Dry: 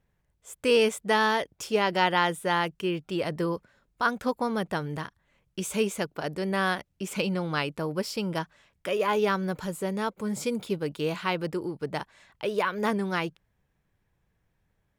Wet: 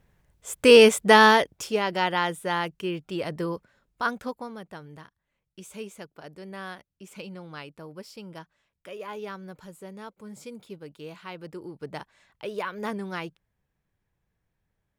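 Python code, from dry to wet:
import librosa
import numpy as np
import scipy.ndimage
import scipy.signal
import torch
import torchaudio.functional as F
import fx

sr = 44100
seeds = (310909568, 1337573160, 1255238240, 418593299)

y = fx.gain(x, sr, db=fx.line((1.29, 8.5), (1.81, -1.5), (4.11, -1.5), (4.58, -12.0), (11.29, -12.0), (11.83, -5.0)))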